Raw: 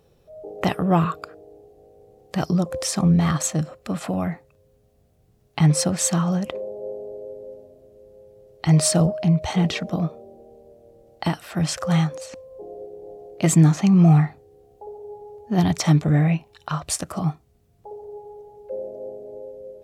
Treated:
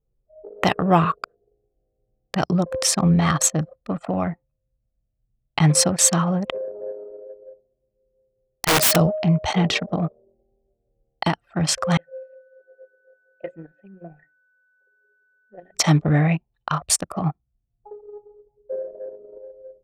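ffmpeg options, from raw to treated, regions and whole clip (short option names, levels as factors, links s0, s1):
-filter_complex "[0:a]asettb=1/sr,asplit=3[s0][s1][s2];[s0]atrim=end=6.844[s3];[s1]atrim=start=6.84:end=8.96,asetpts=PTS-STARTPTS,afade=t=in:d=0.004:c=qsin,afade=t=out:st=2.116:d=0.004:c=qsin,bass=f=250:g=-6,treble=f=4000:g=-1,aeval=exprs='(mod(7.08*val(0)+1,2)-1)/7.08':c=same[s4];[s2]atrim=start=8.956[s5];[s3][s4]acrossfade=d=0.004:c1=hsin:c2=qsin[s6];[s6][s5]acrossfade=d=0.004:c1=qsin:c2=hsin,asettb=1/sr,asplit=3[s7][s8][s9];[s7]atrim=end=11.974[s10];[s8]atrim=start=11.97:end=15.75,asetpts=PTS-STARTPTS,afade=t=in:d=0.004:c=qsin,afade=t=out:st=3.776:d=0.004:c=qsin,asplit=3[s11][s12][s13];[s11]bandpass=f=530:t=q:w=8,volume=1[s14];[s12]bandpass=f=1840:t=q:w=8,volume=0.501[s15];[s13]bandpass=f=2480:t=q:w=8,volume=0.355[s16];[s14][s15][s16]amix=inputs=3:normalize=0,bandreject=f=60:t=h:w=6,bandreject=f=120:t=h:w=6,bandreject=f=180:t=h:w=6,bandreject=f=240:t=h:w=6,bandreject=f=300:t=h:w=6,bandreject=f=360:t=h:w=6,bandreject=f=420:t=h:w=6,bandreject=f=480:t=h:w=6,bandreject=f=540:t=h:w=6,aeval=exprs='val(0)+0.00562*sin(2*PI*1500*n/s)':c=same[s17];[s9]atrim=start=15.746[s18];[s10][s17]acrossfade=d=0.004:c1=hsin:c2=qsin[s19];[s19][s18]acrossfade=d=0.004:c1=qsin:c2=hsin,anlmdn=63.1,lowshelf=f=480:g=-7.5,volume=2.11"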